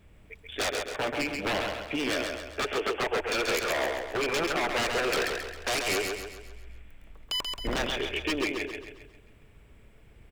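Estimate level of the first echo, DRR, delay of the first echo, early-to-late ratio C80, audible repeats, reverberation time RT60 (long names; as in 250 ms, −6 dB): −4.5 dB, no reverb audible, 134 ms, no reverb audible, 5, no reverb audible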